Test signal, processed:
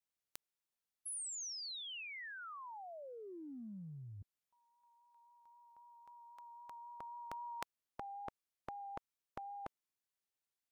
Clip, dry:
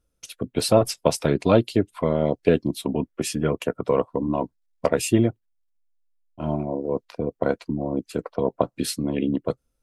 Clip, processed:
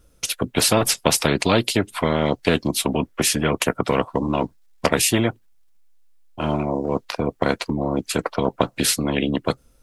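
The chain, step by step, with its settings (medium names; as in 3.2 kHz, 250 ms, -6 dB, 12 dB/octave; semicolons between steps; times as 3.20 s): vibrato 3.8 Hz 16 cents; dynamic bell 210 Hz, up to +5 dB, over -33 dBFS, Q 0.77; spectrum-flattening compressor 2:1; trim -1 dB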